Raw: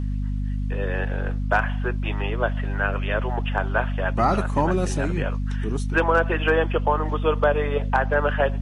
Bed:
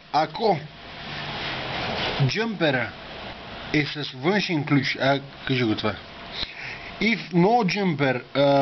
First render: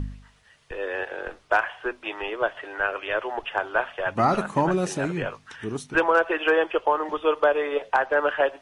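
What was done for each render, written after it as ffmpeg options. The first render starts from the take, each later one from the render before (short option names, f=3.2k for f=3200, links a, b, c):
-af "bandreject=f=50:t=h:w=4,bandreject=f=100:t=h:w=4,bandreject=f=150:t=h:w=4,bandreject=f=200:t=h:w=4,bandreject=f=250:t=h:w=4"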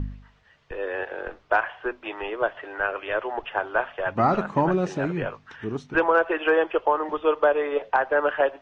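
-af "lowpass=f=7.1k:w=0.5412,lowpass=f=7.1k:w=1.3066,aemphasis=mode=reproduction:type=75fm"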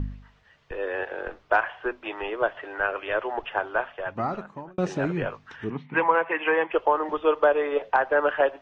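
-filter_complex "[0:a]asettb=1/sr,asplit=3[a][b][c];[a]atrim=end=5.704[d];[b]atrim=start=5.7:end=6.72,asetpts=PTS-STARTPTS,afade=t=in:d=0.004:c=qsin,afade=t=out:st=1.016:d=0.004:c=qsin,highpass=f=140:w=0.5412,highpass=f=140:w=1.3066,equalizer=f=160:t=q:w=4:g=7,equalizer=f=380:t=q:w=4:g=-10,equalizer=f=630:t=q:w=4:g=-7,equalizer=f=970:t=q:w=4:g=5,equalizer=f=1.4k:t=q:w=4:g=-7,equalizer=f=2.1k:t=q:w=4:g=10,lowpass=f=3k:w=0.5412,lowpass=f=3k:w=1.3066[e];[c]atrim=start=6.716[f];[d][e]acrossfade=d=0.004:c1=hsin:c2=qsin[g];[g][f]acrossfade=d=0.004:c1=qsin:c2=hsin,asplit=2[h][i];[h]atrim=end=4.78,asetpts=PTS-STARTPTS,afade=t=out:st=3.51:d=1.27[j];[i]atrim=start=4.78,asetpts=PTS-STARTPTS,afade=t=in:d=0.004:c=hsin[k];[j][k]concat=n=2:v=0:a=1"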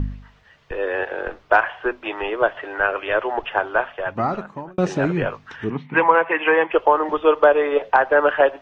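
-af "volume=6dB"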